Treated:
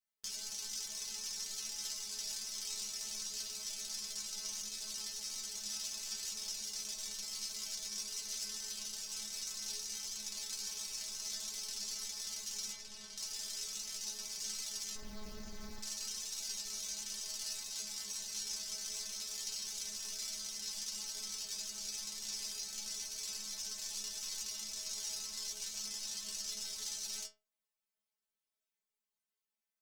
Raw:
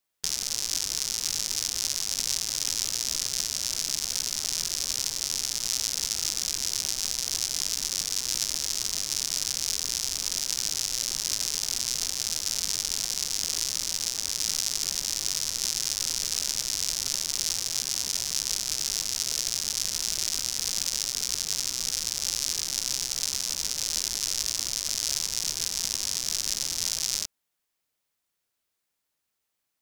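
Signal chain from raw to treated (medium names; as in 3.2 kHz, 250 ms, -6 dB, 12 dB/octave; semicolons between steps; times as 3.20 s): 12.73–13.17 s: low-pass 2.3 kHz 6 dB/octave; 14.95–15.82 s: Schmitt trigger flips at -25 dBFS; inharmonic resonator 210 Hz, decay 0.29 s, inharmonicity 0.002; loudspeaker Doppler distortion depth 0.1 ms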